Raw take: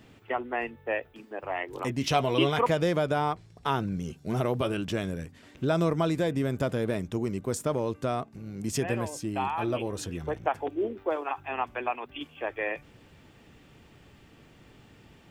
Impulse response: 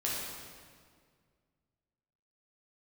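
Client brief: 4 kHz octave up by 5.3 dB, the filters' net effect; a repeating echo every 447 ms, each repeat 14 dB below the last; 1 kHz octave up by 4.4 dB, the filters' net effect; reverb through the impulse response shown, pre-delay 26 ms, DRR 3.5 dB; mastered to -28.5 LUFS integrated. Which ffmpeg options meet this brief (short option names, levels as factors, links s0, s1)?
-filter_complex "[0:a]equalizer=f=1000:t=o:g=5.5,equalizer=f=4000:t=o:g=7,aecho=1:1:447|894:0.2|0.0399,asplit=2[s0][s1];[1:a]atrim=start_sample=2205,adelay=26[s2];[s1][s2]afir=irnorm=-1:irlink=0,volume=0.335[s3];[s0][s3]amix=inputs=2:normalize=0,volume=0.794"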